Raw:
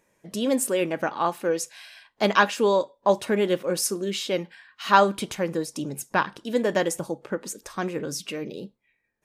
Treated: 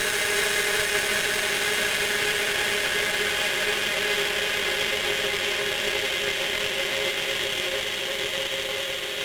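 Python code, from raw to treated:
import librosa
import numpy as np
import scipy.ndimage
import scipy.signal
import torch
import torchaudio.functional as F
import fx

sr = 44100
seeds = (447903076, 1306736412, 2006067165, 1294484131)

y = scipy.signal.sosfilt(scipy.signal.butter(2, 1000.0, 'highpass', fs=sr, output='sos'), x)
y = fx.high_shelf(y, sr, hz=2700.0, db=10.5)
y = fx.rider(y, sr, range_db=10, speed_s=0.5)
y = fx.paulstretch(y, sr, seeds[0], factor=45.0, window_s=0.5, from_s=3.33)
y = fx.cheby_harmonics(y, sr, harmonics=(2, 3), levels_db=(-11, -17), full_scale_db=-19.5)
y = y + 10.0 ** (-6.5 / 20.0) * np.pad(y, (int(361 * sr / 1000.0), 0))[:len(y)]
y = y * 10.0 ** (2.5 / 20.0)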